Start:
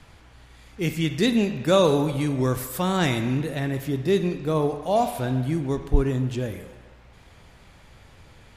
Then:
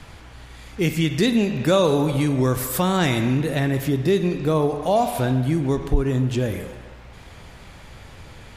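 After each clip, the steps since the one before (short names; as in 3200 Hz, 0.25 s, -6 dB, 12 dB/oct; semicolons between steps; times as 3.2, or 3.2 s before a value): compressor 2:1, threshold -28 dBFS, peak gain reduction 9.5 dB; gain +8 dB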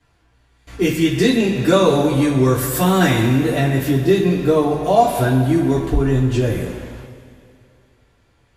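gate with hold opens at -30 dBFS; two-slope reverb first 0.21 s, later 2.5 s, from -18 dB, DRR -9 dB; gain -5 dB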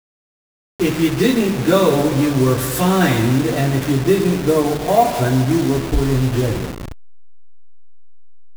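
level-crossing sampler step -21.5 dBFS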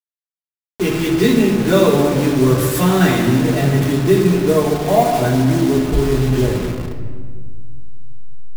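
shoebox room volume 2200 m³, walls mixed, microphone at 1.4 m; gain -1 dB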